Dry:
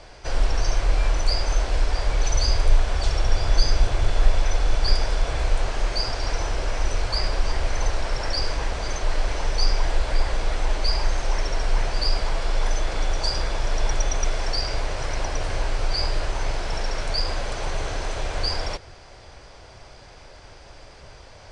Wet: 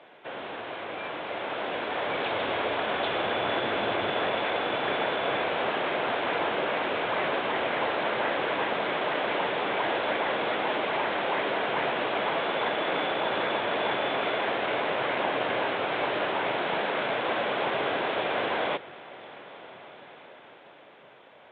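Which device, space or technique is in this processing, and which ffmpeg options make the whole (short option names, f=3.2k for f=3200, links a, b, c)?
Bluetooth headset: -af "highpass=f=190:w=0.5412,highpass=f=190:w=1.3066,dynaudnorm=f=200:g=17:m=9dB,aresample=8000,aresample=44100,volume=-4dB" -ar 16000 -c:a sbc -b:a 64k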